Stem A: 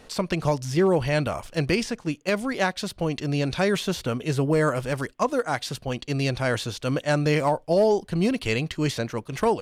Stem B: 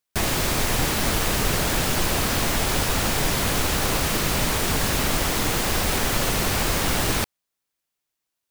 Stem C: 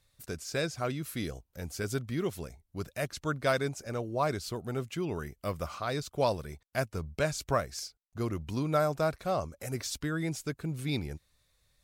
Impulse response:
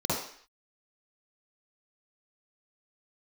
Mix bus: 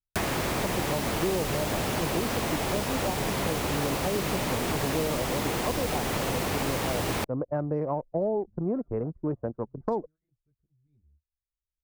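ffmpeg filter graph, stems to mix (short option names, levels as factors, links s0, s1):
-filter_complex "[0:a]lowpass=f=1100:w=0.5412,lowpass=f=1100:w=1.3066,lowshelf=f=180:g=-6,adelay=450,volume=1.06[s0];[1:a]highpass=f=97:p=1,volume=1.26[s1];[2:a]equalizer=f=78:w=1.7:g=14,volume=0.119[s2];[s0][s1][s2]amix=inputs=3:normalize=0,anlmdn=158,adynamicequalizer=threshold=0.01:dfrequency=1500:dqfactor=1.6:tfrequency=1500:tqfactor=1.6:attack=5:release=100:ratio=0.375:range=2.5:mode=cutabove:tftype=bell,acrossover=split=330|2400[s3][s4][s5];[s3]acompressor=threshold=0.0282:ratio=4[s6];[s4]acompressor=threshold=0.0355:ratio=4[s7];[s5]acompressor=threshold=0.0126:ratio=4[s8];[s6][s7][s8]amix=inputs=3:normalize=0"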